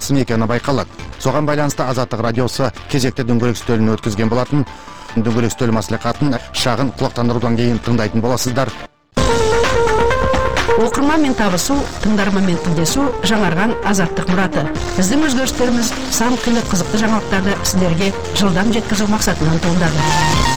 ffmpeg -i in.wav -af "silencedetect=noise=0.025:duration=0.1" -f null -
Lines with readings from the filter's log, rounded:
silence_start: 8.86
silence_end: 9.17 | silence_duration: 0.31